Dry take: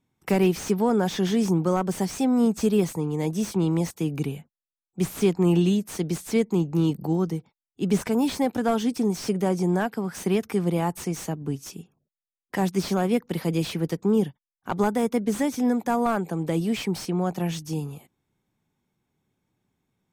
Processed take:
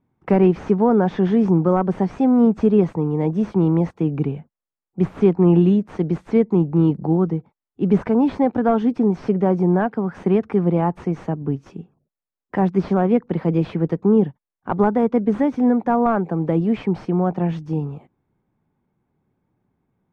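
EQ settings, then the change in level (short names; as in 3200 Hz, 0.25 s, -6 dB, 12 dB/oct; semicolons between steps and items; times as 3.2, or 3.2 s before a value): LPF 1400 Hz 12 dB/oct; +6.0 dB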